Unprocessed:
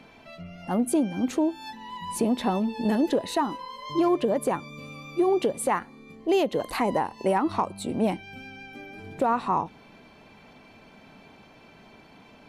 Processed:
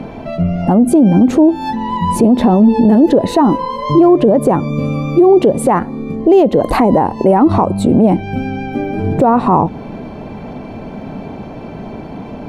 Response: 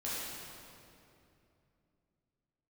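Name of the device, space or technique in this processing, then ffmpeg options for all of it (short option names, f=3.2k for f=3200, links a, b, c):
mastering chain: -af "equalizer=f=710:t=o:w=0.91:g=3,acompressor=threshold=-29dB:ratio=1.5,tiltshelf=f=970:g=10,alimiter=level_in=18.5dB:limit=-1dB:release=50:level=0:latency=1,volume=-1dB"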